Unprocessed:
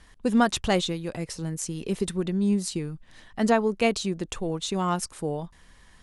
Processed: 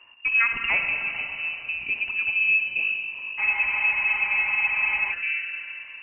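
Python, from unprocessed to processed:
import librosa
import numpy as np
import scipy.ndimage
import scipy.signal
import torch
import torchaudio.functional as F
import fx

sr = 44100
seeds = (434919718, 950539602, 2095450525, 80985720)

y = fx.peak_eq(x, sr, hz=120.0, db=10.0, octaves=0.85)
y = fx.freq_invert(y, sr, carrier_hz=2800)
y = fx.rev_schroeder(y, sr, rt60_s=3.1, comb_ms=31, drr_db=3.5)
y = fx.spec_freeze(y, sr, seeds[0], at_s=3.42, hold_s=1.7)
y = y * librosa.db_to_amplitude(-2.0)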